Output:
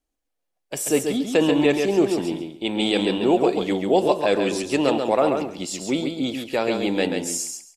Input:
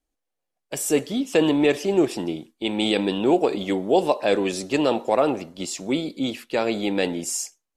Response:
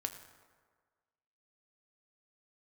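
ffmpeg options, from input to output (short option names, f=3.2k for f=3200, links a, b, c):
-af "aecho=1:1:137|274|411:0.531|0.0956|0.0172"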